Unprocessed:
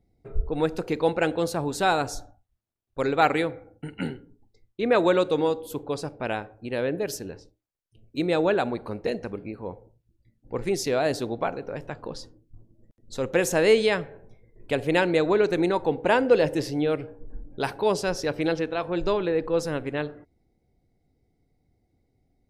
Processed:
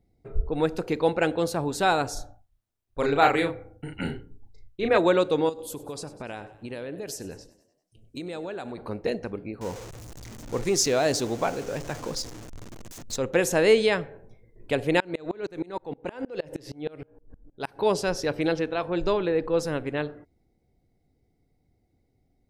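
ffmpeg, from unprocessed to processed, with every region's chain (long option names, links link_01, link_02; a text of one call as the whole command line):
ffmpeg -i in.wav -filter_complex "[0:a]asettb=1/sr,asplit=3[link_01][link_02][link_03];[link_01]atrim=end=2.134[link_04];[link_02]atrim=start=2.13:end=4.98,asetpts=PTS-STARTPTS,afade=type=in:duration=0.004:curve=qsin,afade=type=out:start_time=2.846:duration=0.004:curve=qsin,asubboost=boost=6:cutoff=88,asplit=2[link_05][link_06];[link_06]adelay=35,volume=-4dB[link_07];[link_05][link_07]amix=inputs=2:normalize=0,atrim=end_sample=125685[link_08];[link_03]atrim=start=4.976[link_09];[link_04][link_08]acrossfade=duration=0.004:curve1=hsin:curve2=qsin[link_10];[link_10][link_09]acrossfade=duration=0.004:curve1=qsin:curve2=hsin,asettb=1/sr,asplit=3[link_11][link_12][link_13];[link_11]atrim=end=5.494[link_14];[link_12]atrim=start=5.49:end=8.78,asetpts=PTS-STARTPTS,afade=type=in:duration=0.004:curve=qsin,afade=type=out:start_time=3.286:duration=0.004:curve=qsin,equalizer=frequency=8100:width_type=o:width=1.2:gain=8.5,acompressor=threshold=-32dB:ratio=6:attack=3.2:release=140:knee=1:detection=peak,asplit=6[link_15][link_16][link_17][link_18][link_19][link_20];[link_16]adelay=98,afreqshift=42,volume=-17.5dB[link_21];[link_17]adelay=196,afreqshift=84,volume=-23dB[link_22];[link_18]adelay=294,afreqshift=126,volume=-28.5dB[link_23];[link_19]adelay=392,afreqshift=168,volume=-34dB[link_24];[link_20]adelay=490,afreqshift=210,volume=-39.6dB[link_25];[link_15][link_21][link_22][link_23][link_24][link_25]amix=inputs=6:normalize=0,atrim=end_sample=145089[link_26];[link_13]atrim=start=8.776[link_27];[link_14][link_26]acrossfade=duration=0.004:curve1=hsin:curve2=qsin[link_28];[link_28][link_27]acrossfade=duration=0.004:curve1=qsin:curve2=hsin,asettb=1/sr,asplit=3[link_29][link_30][link_31];[link_29]atrim=end=9.614[link_32];[link_30]atrim=start=9.61:end=13.16,asetpts=PTS-STARTPTS,afade=type=in:duration=0.004:curve=qsin,afade=type=out:start_time=3.546:duration=0.004:curve=qsin,aeval=exprs='val(0)+0.5*0.015*sgn(val(0))':channel_layout=same,equalizer=frequency=6500:width_type=o:width=0.81:gain=10[link_33];[link_31]atrim=start=13.156[link_34];[link_32][link_33]acrossfade=duration=0.004:curve1=hsin:curve2=qsin[link_35];[link_35][link_34]acrossfade=duration=0.004:curve1=qsin:curve2=hsin,asettb=1/sr,asplit=3[link_36][link_37][link_38];[link_36]atrim=end=15.004[link_39];[link_37]atrim=start=15:end=17.79,asetpts=PTS-STARTPTS,afade=type=in:duration=0.004:curve=qsin,afade=type=out:start_time=2.786:duration=0.004:curve=qsin,acompressor=threshold=-22dB:ratio=2.5:attack=3.2:release=140:knee=1:detection=peak,aeval=exprs='val(0)*pow(10,-29*if(lt(mod(-6.4*n/s,1),2*abs(-6.4)/1000),1-mod(-6.4*n/s,1)/(2*abs(-6.4)/1000),(mod(-6.4*n/s,1)-2*abs(-6.4)/1000)/(1-2*abs(-6.4)/1000))/20)':channel_layout=same[link_40];[link_38]atrim=start=17.786[link_41];[link_39][link_40]acrossfade=duration=0.004:curve1=hsin:curve2=qsin[link_42];[link_42][link_41]acrossfade=duration=0.004:curve1=qsin:curve2=hsin" out.wav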